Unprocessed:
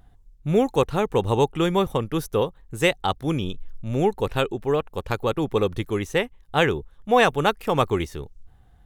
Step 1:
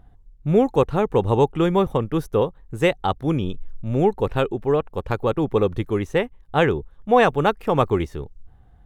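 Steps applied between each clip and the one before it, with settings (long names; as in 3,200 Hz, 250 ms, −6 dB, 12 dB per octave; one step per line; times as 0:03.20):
high-shelf EQ 2,500 Hz −11.5 dB
level +3 dB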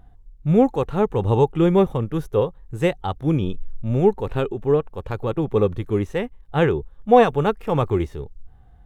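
harmonic and percussive parts rebalanced harmonic +9 dB
level −5.5 dB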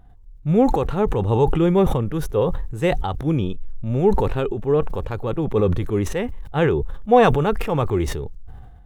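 level that may fall only so fast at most 36 dB per second
level −1 dB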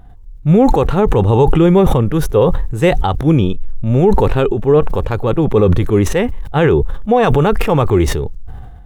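brickwall limiter −11 dBFS, peak gain reduction 9.5 dB
level +9 dB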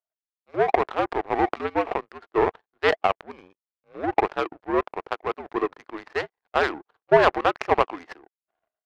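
single-sideband voice off tune −82 Hz 560–2,300 Hz
power curve on the samples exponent 2
level +3.5 dB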